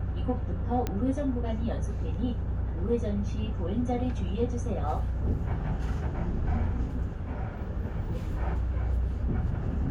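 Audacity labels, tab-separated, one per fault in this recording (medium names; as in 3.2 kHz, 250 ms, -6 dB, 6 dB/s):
0.870000	0.870000	pop -16 dBFS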